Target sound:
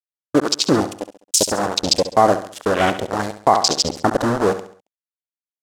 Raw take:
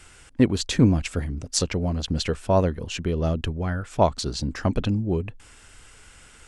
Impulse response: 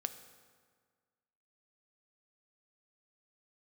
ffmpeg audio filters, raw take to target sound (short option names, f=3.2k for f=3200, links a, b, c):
-filter_complex "[0:a]highpass=f=190:p=1,dynaudnorm=f=340:g=9:m=11.5dB,acrusher=bits=3:mix=0:aa=0.000001,lowpass=6.5k,bass=f=250:g=-9,treble=f=4k:g=10,afwtdn=0.0447,asetrate=50715,aresample=44100,agate=range=-33dB:threshold=-39dB:ratio=3:detection=peak,asplit=2[a][b];[b]aecho=0:1:68|136|204|272:0.251|0.103|0.0422|0.0173[c];[a][c]amix=inputs=2:normalize=0,alimiter=level_in=8.5dB:limit=-1dB:release=50:level=0:latency=1,volume=-1dB"